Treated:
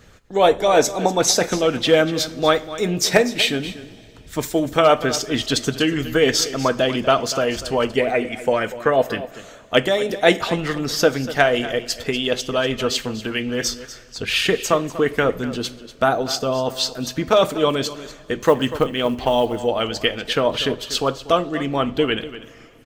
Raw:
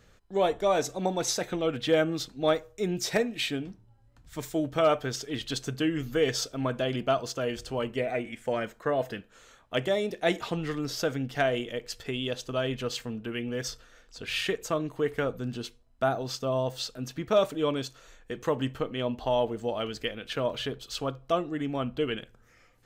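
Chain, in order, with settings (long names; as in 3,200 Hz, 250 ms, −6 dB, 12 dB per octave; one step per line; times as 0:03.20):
coupled-rooms reverb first 0.36 s, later 3.3 s, from −18 dB, DRR 10.5 dB
harmonic and percussive parts rebalanced percussive +7 dB
0:18.40–0:19.63: floating-point word with a short mantissa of 4 bits
on a send: single-tap delay 242 ms −15 dB
on the sum: level +6 dB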